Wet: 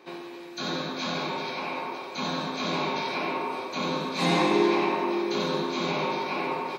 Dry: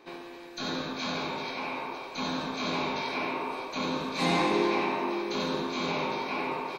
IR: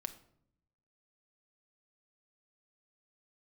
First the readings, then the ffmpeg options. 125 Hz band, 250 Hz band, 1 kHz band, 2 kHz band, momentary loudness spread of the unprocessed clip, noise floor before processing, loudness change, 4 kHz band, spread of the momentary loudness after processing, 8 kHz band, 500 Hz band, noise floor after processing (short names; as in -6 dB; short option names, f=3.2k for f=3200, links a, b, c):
+4.0 dB, +3.0 dB, +2.5 dB, +1.5 dB, 9 LU, -44 dBFS, +3.0 dB, +2.5 dB, 10 LU, +2.5 dB, +3.5 dB, -41 dBFS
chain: -filter_complex "[0:a]highpass=100[a];[1:a]atrim=start_sample=2205[b];[a][b]afir=irnorm=-1:irlink=0,volume=4.5dB"